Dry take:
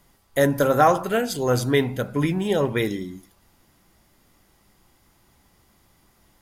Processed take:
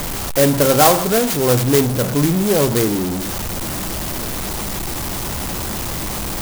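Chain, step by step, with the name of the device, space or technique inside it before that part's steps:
early CD player with a faulty converter (converter with a step at zero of −20.5 dBFS; converter with an unsteady clock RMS 0.12 ms)
level +3 dB

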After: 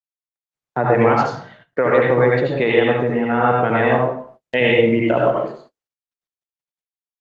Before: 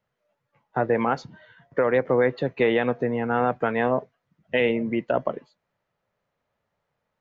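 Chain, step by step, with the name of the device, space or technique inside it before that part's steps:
high-shelf EQ 3,000 Hz +4.5 dB
speakerphone in a meeting room (convolution reverb RT60 0.55 s, pre-delay 69 ms, DRR −3 dB; automatic gain control gain up to 5.5 dB; noise gate −42 dBFS, range −38 dB; Opus 24 kbit/s 48,000 Hz)

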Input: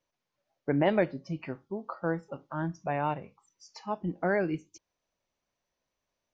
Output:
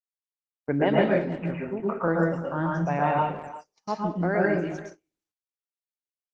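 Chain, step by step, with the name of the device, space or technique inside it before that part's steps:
0:01.16–0:02.08: Butterworth low-pass 2,900 Hz 96 dB per octave
speakerphone in a meeting room (convolution reverb RT60 0.45 s, pre-delay 109 ms, DRR −2 dB; far-end echo of a speakerphone 340 ms, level −14 dB; automatic gain control gain up to 14 dB; noise gate −29 dBFS, range −33 dB; level −8 dB; Opus 20 kbit/s 48,000 Hz)

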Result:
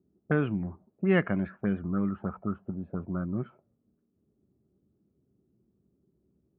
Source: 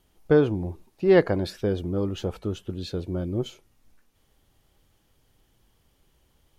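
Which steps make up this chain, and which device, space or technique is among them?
envelope filter bass rig (envelope-controlled low-pass 370–2,800 Hz up, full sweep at −20 dBFS; loudspeaker in its box 81–2,300 Hz, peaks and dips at 96 Hz −7 dB, 200 Hz +8 dB, 340 Hz −5 dB, 480 Hz −9 dB, 860 Hz −6 dB, 1,300 Hz +6 dB)
low-shelf EQ 180 Hz +4 dB
level −5.5 dB

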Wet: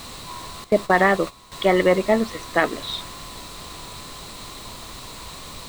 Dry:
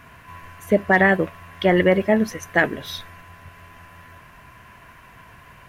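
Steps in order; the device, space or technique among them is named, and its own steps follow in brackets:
horn gramophone (band-pass filter 220–3,300 Hz; parametric band 1,200 Hz +10.5 dB 0.44 octaves; tape wow and flutter; pink noise bed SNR 16 dB)
0:00.64–0:01.52: noise gate −25 dBFS, range −12 dB
thirty-one-band graphic EQ 1,600 Hz −9 dB, 4,000 Hz +12 dB, 8,000 Hz +6 dB, 12,500 Hz −4 dB

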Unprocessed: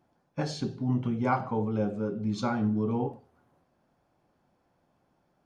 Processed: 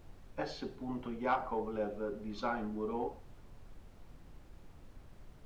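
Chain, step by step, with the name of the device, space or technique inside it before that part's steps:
aircraft cabin announcement (band-pass filter 380–3,500 Hz; soft clipping −19 dBFS, distortion −21 dB; brown noise bed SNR 11 dB)
level −2.5 dB

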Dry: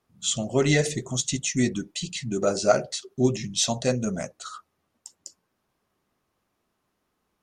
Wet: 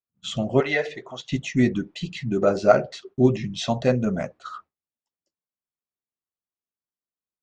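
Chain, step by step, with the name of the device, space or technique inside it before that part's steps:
hearing-loss simulation (low-pass filter 2,500 Hz 12 dB per octave; downward expander −43 dBFS)
0:00.60–0:01.32: three-way crossover with the lows and the highs turned down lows −22 dB, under 460 Hz, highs −18 dB, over 5,400 Hz
level +4 dB

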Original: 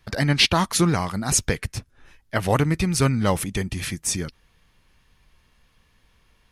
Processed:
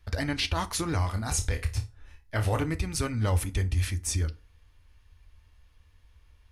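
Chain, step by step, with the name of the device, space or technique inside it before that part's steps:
car stereo with a boomy subwoofer (low shelf with overshoot 110 Hz +9 dB, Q 3; brickwall limiter −12 dBFS, peak gain reduction 9.5 dB)
0:01.02–0:02.64: flutter between parallel walls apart 4.8 metres, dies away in 0.22 s
feedback delay network reverb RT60 0.33 s, low-frequency decay 1×, high-frequency decay 0.7×, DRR 9.5 dB
level −6.5 dB

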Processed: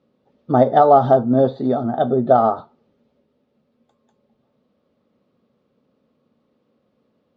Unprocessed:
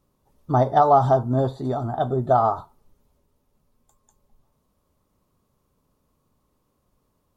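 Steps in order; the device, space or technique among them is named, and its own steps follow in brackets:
kitchen radio (loudspeaker in its box 170–4,100 Hz, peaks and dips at 230 Hz +8 dB, 510 Hz +7 dB, 1,000 Hz −10 dB)
level +4.5 dB

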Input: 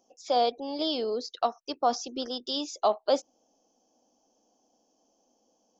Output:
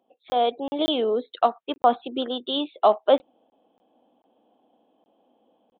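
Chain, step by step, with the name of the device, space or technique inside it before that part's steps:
call with lost packets (high-pass filter 110 Hz 12 dB per octave; downsampling to 8,000 Hz; automatic gain control gain up to 7 dB; dropped packets)

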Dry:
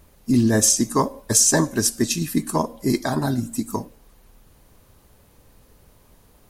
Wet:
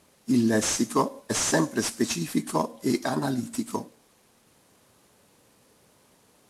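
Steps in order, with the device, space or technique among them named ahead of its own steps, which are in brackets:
early wireless headset (high-pass filter 170 Hz 12 dB per octave; variable-slope delta modulation 64 kbit/s)
level −3 dB

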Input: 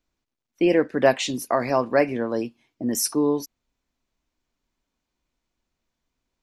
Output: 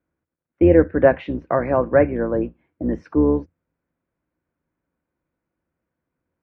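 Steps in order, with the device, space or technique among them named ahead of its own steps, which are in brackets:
sub-octave bass pedal (sub-octave generator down 2 octaves, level −2 dB; loudspeaker in its box 68–2,100 Hz, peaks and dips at 85 Hz +7 dB, 160 Hz +9 dB, 320 Hz +7 dB, 520 Hz +8 dB, 1,500 Hz +5 dB)
level −1 dB

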